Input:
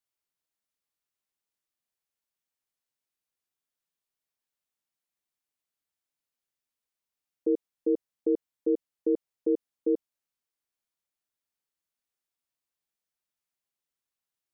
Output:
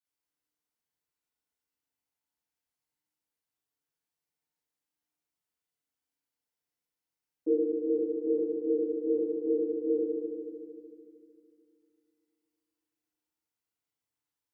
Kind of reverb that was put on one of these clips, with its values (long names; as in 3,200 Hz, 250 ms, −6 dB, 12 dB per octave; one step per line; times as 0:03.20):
feedback delay network reverb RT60 2.4 s, low-frequency decay 1.25×, high-frequency decay 0.5×, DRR −10 dB
level −10.5 dB